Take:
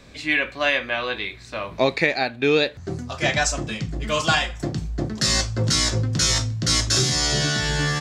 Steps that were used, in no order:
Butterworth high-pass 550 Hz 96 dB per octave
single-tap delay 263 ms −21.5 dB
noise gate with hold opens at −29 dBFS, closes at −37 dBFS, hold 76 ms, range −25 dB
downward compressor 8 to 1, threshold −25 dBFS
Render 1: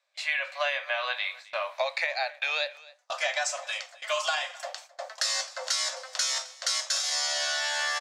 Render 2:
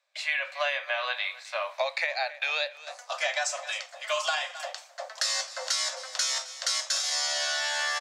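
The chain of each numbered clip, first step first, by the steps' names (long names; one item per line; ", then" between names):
Butterworth high-pass, then noise gate with hold, then downward compressor, then single-tap delay
single-tap delay, then noise gate with hold, then Butterworth high-pass, then downward compressor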